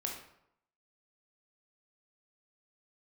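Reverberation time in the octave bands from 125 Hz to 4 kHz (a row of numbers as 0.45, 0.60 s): 0.75, 0.75, 0.75, 0.75, 0.60, 0.50 s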